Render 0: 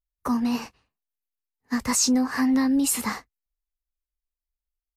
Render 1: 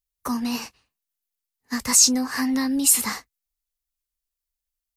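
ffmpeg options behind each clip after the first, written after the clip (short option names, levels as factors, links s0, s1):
-af "highshelf=f=2600:g=11.5,volume=0.75"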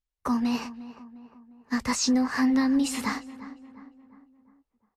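-filter_complex "[0:a]aemphasis=mode=reproduction:type=75fm,acrossover=split=6300[s0][s1];[s1]acompressor=threshold=0.0126:ratio=4:attack=1:release=60[s2];[s0][s2]amix=inputs=2:normalize=0,asplit=2[s3][s4];[s4]adelay=353,lowpass=f=1800:p=1,volume=0.178,asplit=2[s5][s6];[s6]adelay=353,lowpass=f=1800:p=1,volume=0.52,asplit=2[s7][s8];[s8]adelay=353,lowpass=f=1800:p=1,volume=0.52,asplit=2[s9][s10];[s10]adelay=353,lowpass=f=1800:p=1,volume=0.52,asplit=2[s11][s12];[s12]adelay=353,lowpass=f=1800:p=1,volume=0.52[s13];[s3][s5][s7][s9][s11][s13]amix=inputs=6:normalize=0"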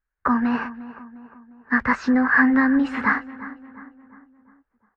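-af "lowpass=f=1600:t=q:w=5.8,volume=1.58"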